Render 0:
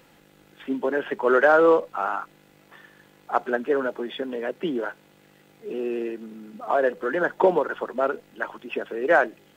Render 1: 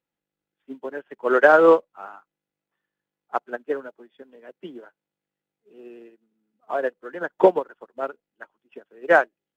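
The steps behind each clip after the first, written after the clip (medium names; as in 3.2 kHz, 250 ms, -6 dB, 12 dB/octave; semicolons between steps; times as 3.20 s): upward expansion 2.5:1, over -39 dBFS; trim +5.5 dB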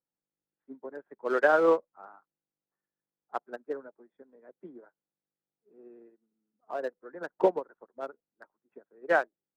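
local Wiener filter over 15 samples; trim -8.5 dB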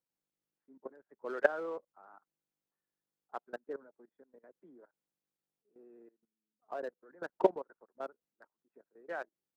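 level held to a coarse grid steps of 19 dB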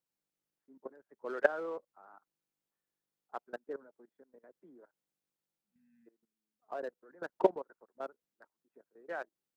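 spectral replace 5.50–6.04 s, 250–1500 Hz before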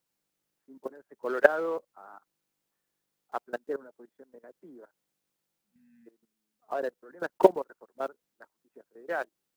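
block-companded coder 7-bit; trim +8 dB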